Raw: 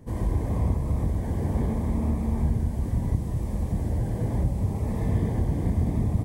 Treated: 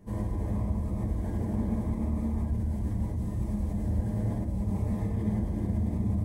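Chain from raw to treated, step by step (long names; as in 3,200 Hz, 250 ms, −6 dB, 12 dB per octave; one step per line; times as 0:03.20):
brickwall limiter −20.5 dBFS, peak gain reduction 8.5 dB
on a send: convolution reverb RT60 0.40 s, pre-delay 5 ms, DRR 1 dB
on the sum: level −6.5 dB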